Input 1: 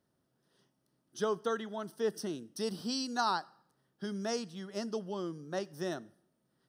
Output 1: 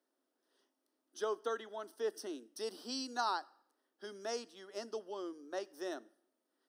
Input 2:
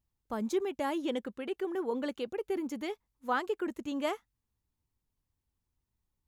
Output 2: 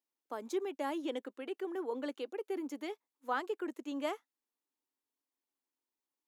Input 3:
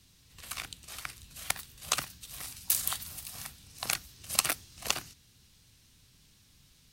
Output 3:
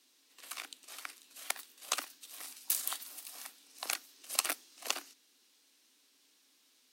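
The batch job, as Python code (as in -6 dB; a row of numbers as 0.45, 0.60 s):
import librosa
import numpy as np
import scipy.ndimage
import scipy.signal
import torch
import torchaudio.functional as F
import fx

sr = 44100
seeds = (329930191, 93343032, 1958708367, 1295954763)

y = scipy.signal.sosfilt(scipy.signal.ellip(4, 1.0, 60, 270.0, 'highpass', fs=sr, output='sos'), x)
y = F.gain(torch.from_numpy(y), -3.5).numpy()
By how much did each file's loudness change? -4.5, -4.5, -4.5 LU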